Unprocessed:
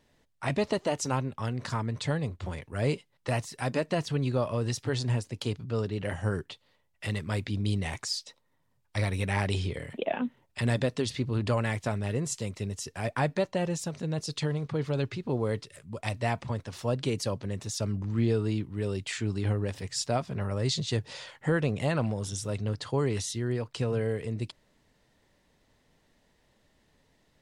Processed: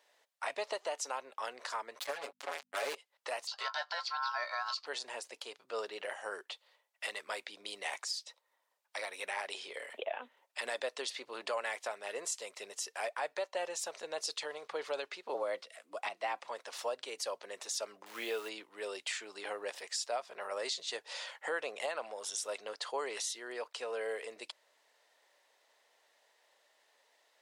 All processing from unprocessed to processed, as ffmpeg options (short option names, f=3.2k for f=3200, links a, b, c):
-filter_complex "[0:a]asettb=1/sr,asplit=3[a][b][c];[a]atrim=end=1.994[d];[b]atrim=start=1.99:end=2.95,asetpts=PTS-STARTPTS,afade=t=in:d=0.004:c=qsin,afade=t=out:st=0.956:d=0.004:c=qsin,acrusher=bits=4:mix=0:aa=0.5,aecho=1:1:7.1:0.79,atrim=end_sample=42336,aeval=exprs='val(0)+0.00562*(sin(2*PI*50*n/s)+sin(2*PI*2*50*n/s)/2+sin(2*PI*3*50*n/s)/3+sin(2*PI*4*50*n/s)/4+sin(2*PI*5*50*n/s)/5)':c=same[e];[c]atrim=start=2.946[f];[d][e]acrossfade=d=0.004:c1=hsin:c2=qsin[g];[g][f]acrossfade=d=0.004:c1=qsin:c2=hsin,asettb=1/sr,asplit=3[h][i][j];[h]atrim=end=3.474[k];[i]atrim=start=3.47:end=4.86,asetpts=PTS-STARTPTS,afade=t=in:d=0.004:c=qsin,afade=t=out:st=1.386:d=0.004:c=qsin,aeval=exprs='val(0)*sin(2*PI*1200*n/s)':c=same,lowpass=f=4.6k:t=q:w=8.9,asplit=2[l][m];[m]adelay=15,volume=-13dB[n];[l][n]amix=inputs=2:normalize=0,atrim=end_sample=61299[o];[j]atrim=start=4.856[p];[k][o]acrossfade=d=0.004:c1=hsin:c2=qsin[q];[q][p]acrossfade=d=0.004:c1=qsin:c2=hsin,asettb=1/sr,asplit=3[r][s][t];[r]atrim=end=15.344[u];[s]atrim=start=15.34:end=16.4,asetpts=PTS-STARTPTS,afade=t=in:d=0.004:c=qsin,afade=t=out:st=1.056:d=0.004:c=qsin,acrossover=split=4400[v][w];[w]acompressor=threshold=-58dB:ratio=4:attack=1:release=60[x];[v][x]amix=inputs=2:normalize=0,afreqshift=82[y];[t]atrim=start=16.396[z];[u][y]acrossfade=d=0.004:c1=hsin:c2=qsin[aa];[aa][z]acrossfade=d=0.004:c1=qsin:c2=hsin,asettb=1/sr,asplit=3[ab][ac][ad];[ab]atrim=end=18.064[ae];[ac]atrim=start=18.06:end=18.49,asetpts=PTS-STARTPTS,afade=t=in:d=0.004:c=qsin,afade=t=out:st=0.426:d=0.004:c=qsin,lowpass=f=3.1k:t=q:w=1.8,acrusher=bits=9:dc=4:mix=0:aa=0.000001[af];[ad]atrim=start=18.486[ag];[ae][af]acrossfade=d=0.004:c1=hsin:c2=qsin[ah];[ah][ag]acrossfade=d=0.004:c1=qsin:c2=hsin,highpass=f=540:w=0.5412,highpass=f=540:w=1.3066,alimiter=level_in=3dB:limit=-24dB:level=0:latency=1:release=371,volume=-3dB,volume=1dB"